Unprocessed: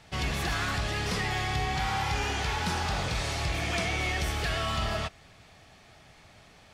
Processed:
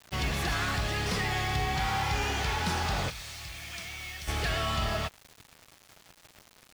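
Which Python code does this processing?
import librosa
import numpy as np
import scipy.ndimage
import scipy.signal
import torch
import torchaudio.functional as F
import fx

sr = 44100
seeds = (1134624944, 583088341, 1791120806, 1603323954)

y = fx.tone_stack(x, sr, knobs='5-5-5', at=(3.09, 4.27), fade=0.02)
y = fx.quant_dither(y, sr, seeds[0], bits=8, dither='none')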